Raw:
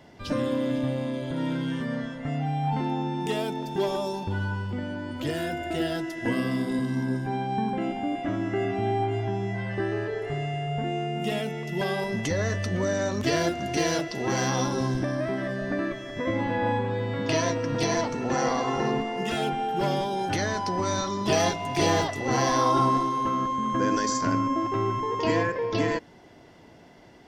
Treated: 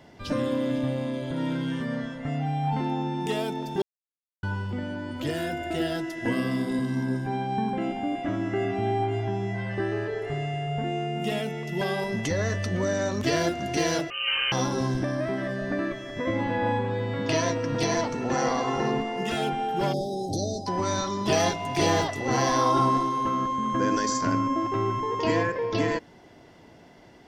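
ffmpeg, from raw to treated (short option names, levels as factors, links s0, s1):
-filter_complex "[0:a]asettb=1/sr,asplit=3[s0][s1][s2];[s0]atrim=end=14.104[s3];[s1]atrim=start=14.1:end=14.52,asetpts=PTS-STARTPTS,afade=t=in:d=0.004:c=qsin,afade=t=out:st=0.416:d=0.004:c=qsin,lowpass=f=2700:t=q:w=0.5098,lowpass=f=2700:t=q:w=0.6013,lowpass=f=2700:t=q:w=0.9,lowpass=f=2700:t=q:w=2.563,afreqshift=-3200[s4];[s2]atrim=start=14.516[s5];[s3][s4]acrossfade=d=0.004:c1=hsin:c2=qsin[s6];[s6][s5]acrossfade=d=0.004:c1=qsin:c2=hsin,asplit=3[s7][s8][s9];[s7]afade=t=out:st=19.92:d=0.02[s10];[s8]asuperstop=centerf=1700:order=20:qfactor=0.57,afade=t=in:st=19.92:d=0.02,afade=t=out:st=20.66:d=0.02[s11];[s9]afade=t=in:st=20.66:d=0.02[s12];[s10][s11][s12]amix=inputs=3:normalize=0,asplit=3[s13][s14][s15];[s13]atrim=end=3.82,asetpts=PTS-STARTPTS,afade=t=out:st=3.816:d=0.004:c=hsin[s16];[s14]atrim=start=3.82:end=4.43,asetpts=PTS-STARTPTS,volume=0[s17];[s15]atrim=start=4.43,asetpts=PTS-STARTPTS,afade=t=in:d=0.004:c=hsin[s18];[s16][s17][s18]concat=n=3:v=0:a=1"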